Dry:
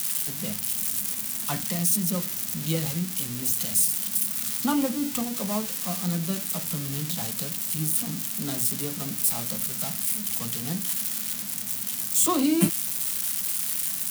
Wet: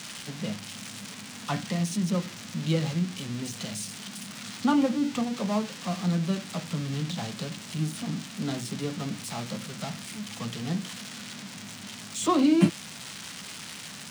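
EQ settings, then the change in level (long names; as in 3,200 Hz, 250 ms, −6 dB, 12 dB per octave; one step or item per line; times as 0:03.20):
high-pass filter 72 Hz
high-frequency loss of the air 130 metres
+2.0 dB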